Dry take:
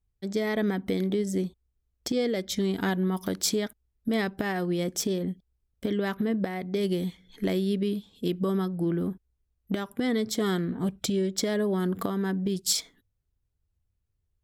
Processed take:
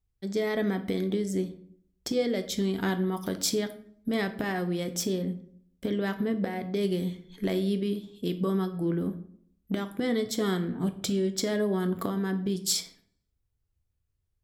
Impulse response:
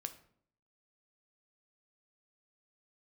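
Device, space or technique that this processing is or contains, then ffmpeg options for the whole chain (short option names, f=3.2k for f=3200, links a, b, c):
bathroom: -filter_complex "[1:a]atrim=start_sample=2205[a];[0:a][a]afir=irnorm=-1:irlink=0,volume=1.5dB"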